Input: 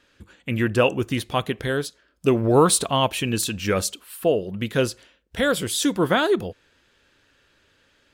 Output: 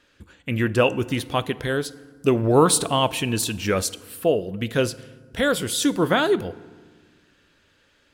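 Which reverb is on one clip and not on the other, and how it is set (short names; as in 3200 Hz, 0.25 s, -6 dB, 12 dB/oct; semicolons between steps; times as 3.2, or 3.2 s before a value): FDN reverb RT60 1.5 s, low-frequency decay 1.5×, high-frequency decay 0.6×, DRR 17 dB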